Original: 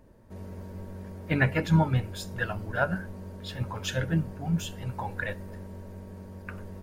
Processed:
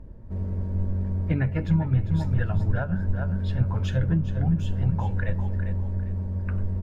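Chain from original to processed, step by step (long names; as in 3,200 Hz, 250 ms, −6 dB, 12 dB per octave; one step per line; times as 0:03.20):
repeating echo 400 ms, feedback 28%, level −11 dB
downward compressor 6 to 1, threshold −29 dBFS, peak gain reduction 12.5 dB
RIAA equalisation playback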